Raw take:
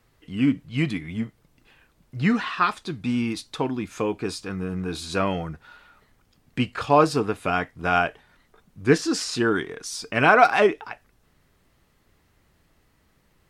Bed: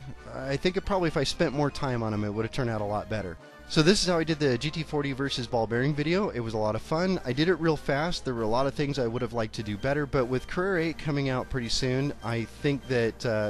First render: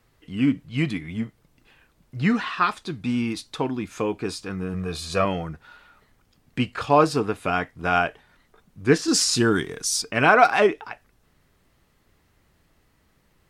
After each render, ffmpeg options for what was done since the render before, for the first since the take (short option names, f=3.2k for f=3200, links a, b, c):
-filter_complex "[0:a]asettb=1/sr,asplit=3[a][b][c];[a]atrim=end=4.744[d];[b]atrim=start=4.74:end=5.25,asetpts=PTS-STARTPTS,afade=t=in:d=0.004:c=qsin,afade=t=out:st=0.506:d=0.004:c=qsin,aecho=1:1:1.7:0.64,atrim=end_sample=22491[e];[c]atrim=start=5.246[f];[d][e]acrossfade=d=0.004:c1=hsin:c2=qsin[g];[g][f]acrossfade=d=0.004:c1=qsin:c2=hsin,asettb=1/sr,asplit=3[h][i][j];[h]atrim=end=9.084[k];[i]atrim=start=9.08:end=10.02,asetpts=PTS-STARTPTS,afade=t=in:d=0.004:c=qsin,afade=t=out:st=0.936:d=0.004:c=qsin,bass=f=250:g=7,treble=f=4k:g=11[l];[j]atrim=start=10.016[m];[k][l]acrossfade=d=0.004:c1=hsin:c2=qsin[n];[n][m]acrossfade=d=0.004:c1=qsin:c2=hsin"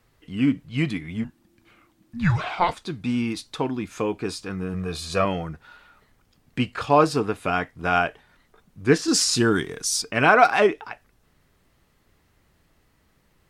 -filter_complex "[0:a]asettb=1/sr,asplit=3[a][b][c];[a]atrim=end=1.244[d];[b]atrim=start=1.24:end=2.74,asetpts=PTS-STARTPTS,afade=t=in:d=0.004:c=qsin,afade=t=out:st=1.496:d=0.004:c=qsin,afreqshift=-360[e];[c]atrim=start=2.736[f];[d][e]acrossfade=d=0.004:c1=hsin:c2=qsin[g];[g][f]acrossfade=d=0.004:c1=qsin:c2=hsin"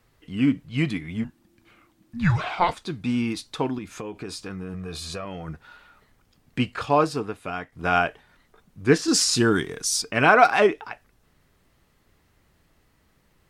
-filter_complex "[0:a]asettb=1/sr,asplit=3[a][b][c];[a]atrim=end=3.784[d];[b]atrim=start=3.78:end=5.48,asetpts=PTS-STARTPTS,afade=t=in:d=0.004:c=qsin,afade=t=out:st=1.696:d=0.004:c=qsin,acompressor=threshold=-30dB:ratio=6:attack=3.2:release=140:knee=1:detection=peak[e];[c]atrim=start=5.476[f];[d][e]acrossfade=d=0.004:c1=hsin:c2=qsin[g];[g][f]acrossfade=d=0.004:c1=qsin:c2=hsin,asplit=2[h][i];[h]atrim=end=7.72,asetpts=PTS-STARTPTS,afade=t=out:st=6.72:d=1:c=qua:silence=0.398107[j];[i]atrim=start=7.72,asetpts=PTS-STARTPTS,afade=t=in:d=0.004:c=hsin:silence=0.398107[k];[j][k]concat=n=2:v=0:a=1"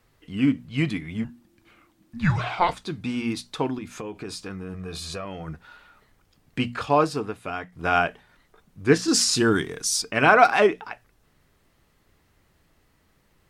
-af "bandreject=f=60:t=h:w=6,bandreject=f=120:t=h:w=6,bandreject=f=180:t=h:w=6,bandreject=f=240:t=h:w=6"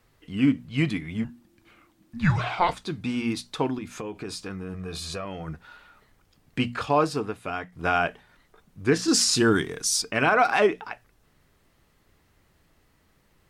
-af "alimiter=limit=-10dB:level=0:latency=1:release=84"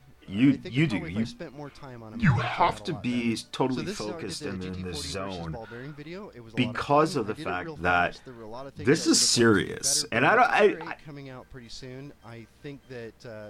-filter_complex "[1:a]volume=-14dB[a];[0:a][a]amix=inputs=2:normalize=0"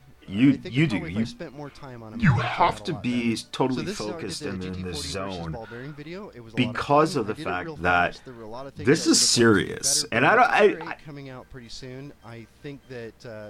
-af "volume=2.5dB"